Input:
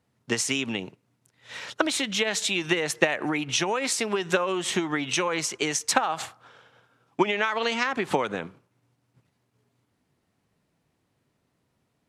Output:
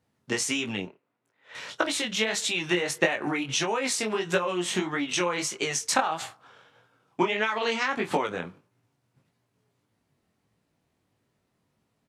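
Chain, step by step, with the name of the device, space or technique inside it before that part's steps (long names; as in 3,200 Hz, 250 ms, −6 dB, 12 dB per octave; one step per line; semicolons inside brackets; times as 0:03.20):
0:00.85–0:01.55: three-way crossover with the lows and the highs turned down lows −17 dB, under 290 Hz, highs −15 dB, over 2,700 Hz
double-tracked vocal (double-tracking delay 28 ms −14 dB; chorus effect 1.6 Hz, delay 17.5 ms, depth 5.7 ms)
level +1.5 dB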